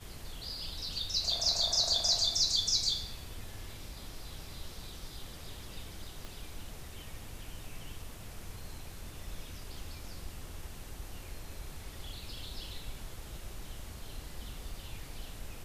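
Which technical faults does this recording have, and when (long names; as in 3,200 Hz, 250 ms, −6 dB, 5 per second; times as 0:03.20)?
0:06.25: click −29 dBFS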